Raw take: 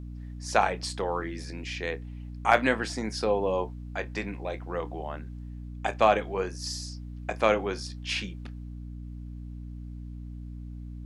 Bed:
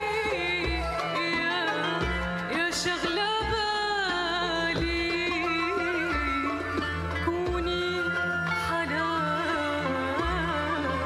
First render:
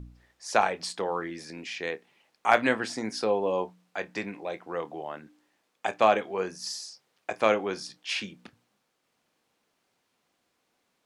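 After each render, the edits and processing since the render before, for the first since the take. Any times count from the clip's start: de-hum 60 Hz, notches 5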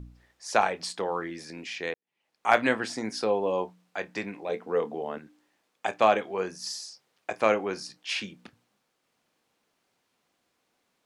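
1.94–2.52 fade in quadratic; 4.49–5.18 small resonant body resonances 230/440 Hz, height 15 dB, ringing for 95 ms; 7.42–8 notch 3400 Hz, Q 5.5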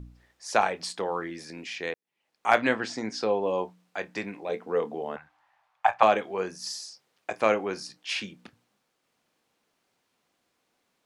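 2.56–3.46 LPF 7400 Hz 24 dB/oct; 5.16–6.03 EQ curve 130 Hz 0 dB, 230 Hz -22 dB, 370 Hz -23 dB, 800 Hz +12 dB, 7700 Hz -11 dB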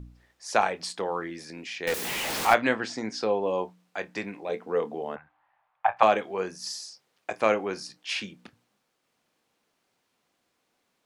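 1.87–2.54 zero-crossing step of -24 dBFS; 5.15–5.97 air absorption 360 m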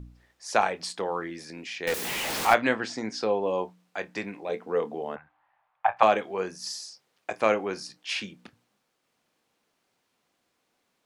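nothing audible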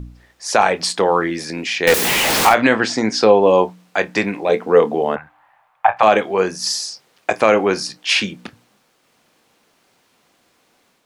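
AGC gain up to 4 dB; maximiser +11 dB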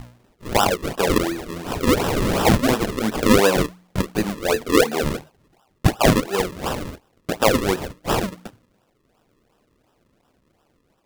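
flange 0.2 Hz, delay 8 ms, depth 3.1 ms, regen -35%; decimation with a swept rate 40×, swing 100% 2.8 Hz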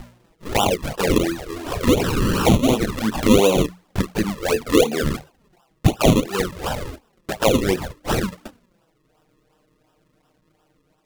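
in parallel at -5.5 dB: soft clip -17 dBFS, distortion -9 dB; on the sum: envelope flanger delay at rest 6.6 ms, full sweep at -12 dBFS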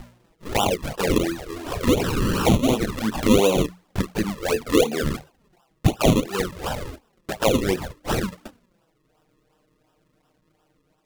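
gain -2.5 dB

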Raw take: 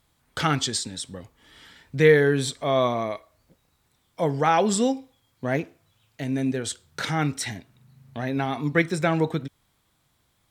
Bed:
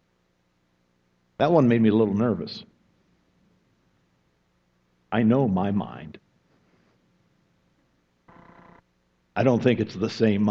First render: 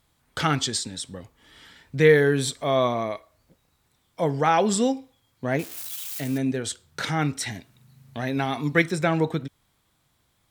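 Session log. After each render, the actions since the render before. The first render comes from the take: 2.1–2.76 high shelf 9700 Hz +6.5 dB; 5.59–6.38 switching spikes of -26.5 dBFS; 7.54–8.91 high shelf 2700 Hz +6 dB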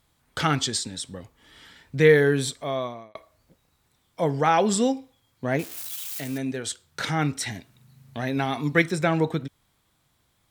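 2.33–3.15 fade out; 6.2–7 low shelf 490 Hz -5.5 dB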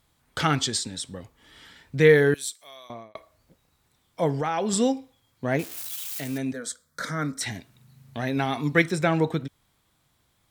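2.34–2.9 differentiator; 4.33–4.73 compressor 4:1, threshold -23 dBFS; 6.53–7.41 fixed phaser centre 550 Hz, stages 8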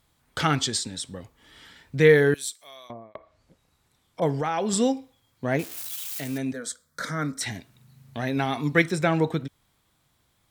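2.87–4.22 treble ducked by the level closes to 790 Hz, closed at -35.5 dBFS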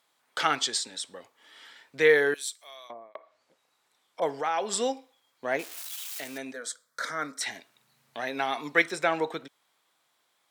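HPF 520 Hz 12 dB/oct; high shelf 8900 Hz -6 dB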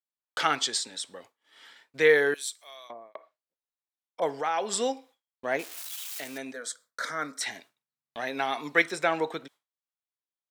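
expander -48 dBFS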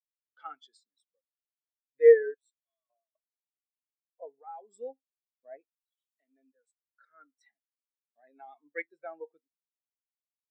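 spectral expander 2.5:1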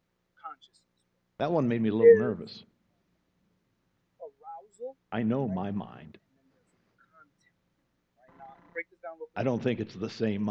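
add bed -8.5 dB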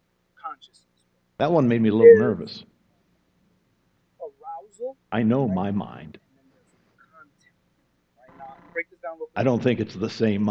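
gain +7.5 dB; limiter -2 dBFS, peak gain reduction 2 dB

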